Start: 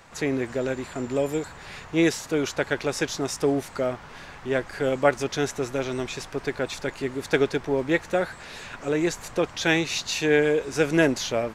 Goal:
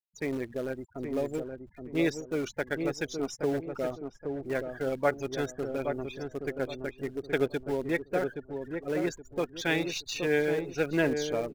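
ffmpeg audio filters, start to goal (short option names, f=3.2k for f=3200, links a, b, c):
-filter_complex "[0:a]afftfilt=real='re*gte(hypot(re,im),0.0398)':imag='im*gte(hypot(re,im),0.0398)':win_size=1024:overlap=0.75,asplit=2[a][b];[b]acrusher=bits=5:dc=4:mix=0:aa=0.000001,volume=-10dB[c];[a][c]amix=inputs=2:normalize=0,asplit=2[d][e];[e]adelay=822,lowpass=f=940:p=1,volume=-5dB,asplit=2[f][g];[g]adelay=822,lowpass=f=940:p=1,volume=0.36,asplit=2[h][i];[i]adelay=822,lowpass=f=940:p=1,volume=0.36,asplit=2[j][k];[k]adelay=822,lowpass=f=940:p=1,volume=0.36[l];[d][f][h][j][l]amix=inputs=5:normalize=0,volume=-9dB"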